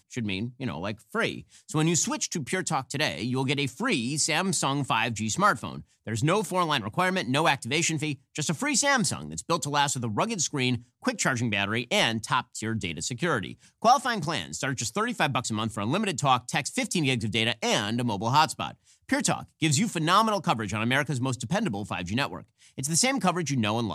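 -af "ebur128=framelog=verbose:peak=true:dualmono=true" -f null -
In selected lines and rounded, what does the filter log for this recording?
Integrated loudness:
  I:         -23.5 LUFS
  Threshold: -33.6 LUFS
Loudness range:
  LRA:         1.8 LU
  Threshold: -43.4 LUFS
  LRA low:   -24.3 LUFS
  LRA high:  -22.5 LUFS
True peak:
  Peak:       -7.6 dBFS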